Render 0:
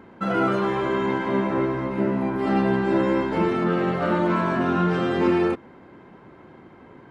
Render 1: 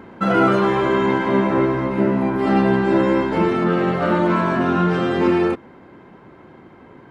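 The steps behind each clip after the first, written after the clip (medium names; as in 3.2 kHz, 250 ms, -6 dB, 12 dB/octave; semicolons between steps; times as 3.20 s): gain riding 2 s; trim +4.5 dB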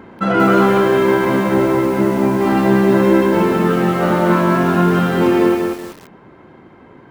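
bit-crushed delay 188 ms, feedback 35%, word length 6-bit, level -3 dB; trim +1.5 dB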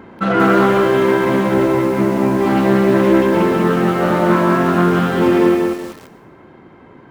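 on a send at -14.5 dB: reverberation RT60 1.0 s, pre-delay 97 ms; on the sum: loudspeaker Doppler distortion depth 0.15 ms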